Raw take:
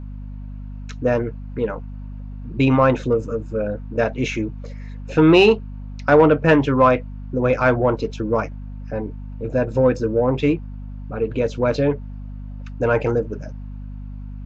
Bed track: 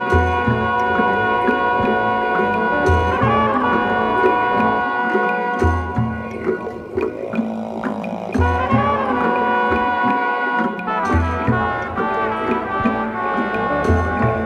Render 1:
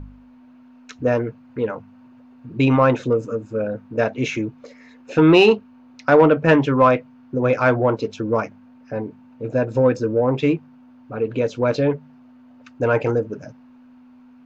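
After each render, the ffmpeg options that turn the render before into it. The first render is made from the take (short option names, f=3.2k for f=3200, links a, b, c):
-af "bandreject=f=50:t=h:w=4,bandreject=f=100:t=h:w=4,bandreject=f=150:t=h:w=4,bandreject=f=200:t=h:w=4"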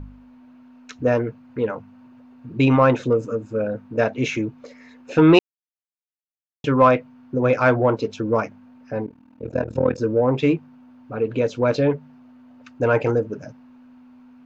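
-filter_complex "[0:a]asettb=1/sr,asplit=3[a][b][c];[a]atrim=end=9.064[d];[b]atrim=start=9.06:end=9.98,asetpts=PTS-STARTPTS,afade=t=in:d=0.004:c=qsin,afade=t=out:st=0.916:d=0.004:c=qsin,tremolo=f=40:d=0.919[e];[c]atrim=start=9.976[f];[d][e]acrossfade=d=0.004:c1=hsin:c2=qsin[g];[g][f]acrossfade=d=0.004:c1=qsin:c2=hsin,asplit=3[h][i][j];[h]atrim=end=5.39,asetpts=PTS-STARTPTS,afade=t=out:st=5.386:d=0.004:c=hsin[k];[i]atrim=start=5.39:end=6.64,asetpts=PTS-STARTPTS,volume=0[l];[j]atrim=start=6.64,asetpts=PTS-STARTPTS,afade=t=in:d=0.004:c=hsin[m];[k][l][m]concat=n=3:v=0:a=1"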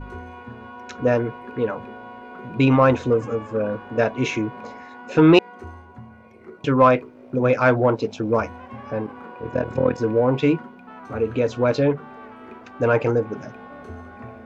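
-filter_complex "[1:a]volume=-22dB[a];[0:a][a]amix=inputs=2:normalize=0"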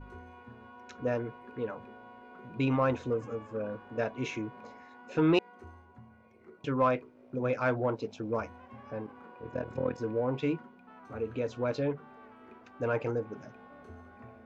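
-af "volume=-12dB"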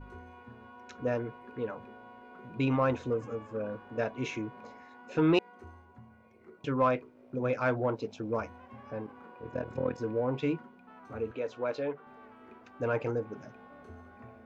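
-filter_complex "[0:a]asettb=1/sr,asplit=3[a][b][c];[a]atrim=end=11.314[d];[b]atrim=start=11.31:end=12.07,asetpts=PTS-STARTPTS,afade=t=in:d=0.004:c=qsin,afade=t=out:st=0.756:d=0.004:c=qsin,bass=f=250:g=-14,treble=f=4k:g=-6[e];[c]atrim=start=12.066[f];[d][e]acrossfade=d=0.004:c1=hsin:c2=qsin[g];[g][f]acrossfade=d=0.004:c1=qsin:c2=hsin"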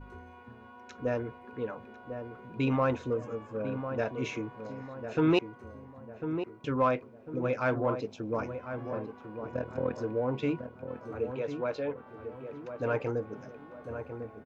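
-filter_complex "[0:a]asplit=2[a][b];[b]adelay=1049,lowpass=f=1.2k:p=1,volume=-8dB,asplit=2[c][d];[d]adelay=1049,lowpass=f=1.2k:p=1,volume=0.44,asplit=2[e][f];[f]adelay=1049,lowpass=f=1.2k:p=1,volume=0.44,asplit=2[g][h];[h]adelay=1049,lowpass=f=1.2k:p=1,volume=0.44,asplit=2[i][j];[j]adelay=1049,lowpass=f=1.2k:p=1,volume=0.44[k];[a][c][e][g][i][k]amix=inputs=6:normalize=0"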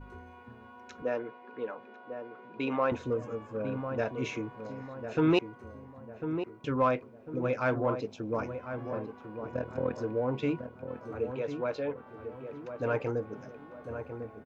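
-filter_complex "[0:a]asettb=1/sr,asplit=3[a][b][c];[a]atrim=end=1.024[d];[b]atrim=start=1.02:end=2.92,asetpts=PTS-STARTPTS,afade=t=in:d=0.004:c=qsin,afade=t=out:st=1.896:d=0.004:c=qsin,highpass=300,lowpass=4.8k[e];[c]atrim=start=2.916[f];[d][e]acrossfade=d=0.004:c1=hsin:c2=qsin[g];[g][f]acrossfade=d=0.004:c1=qsin:c2=hsin"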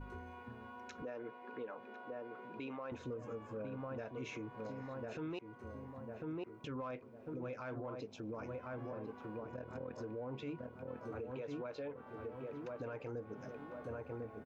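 -af "acompressor=threshold=-46dB:ratio=1.5,alimiter=level_in=12dB:limit=-24dB:level=0:latency=1:release=123,volume=-12dB"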